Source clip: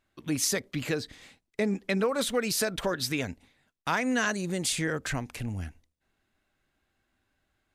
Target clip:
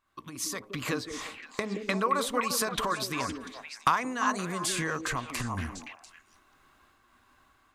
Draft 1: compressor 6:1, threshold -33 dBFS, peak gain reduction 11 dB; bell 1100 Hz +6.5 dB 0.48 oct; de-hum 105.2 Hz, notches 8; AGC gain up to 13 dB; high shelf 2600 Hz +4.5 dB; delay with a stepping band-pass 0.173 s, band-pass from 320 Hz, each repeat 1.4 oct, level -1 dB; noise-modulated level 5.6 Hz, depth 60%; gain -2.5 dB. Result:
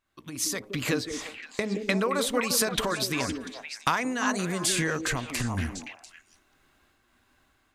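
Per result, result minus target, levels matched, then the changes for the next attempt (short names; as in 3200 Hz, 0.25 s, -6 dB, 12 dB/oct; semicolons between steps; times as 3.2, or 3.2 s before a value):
1000 Hz band -5.0 dB; compressor: peak gain reduction -5 dB
change: bell 1100 Hz +16.5 dB 0.48 oct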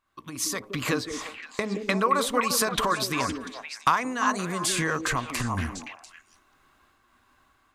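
compressor: peak gain reduction -5 dB
change: compressor 6:1, threshold -39 dBFS, peak gain reduction 16 dB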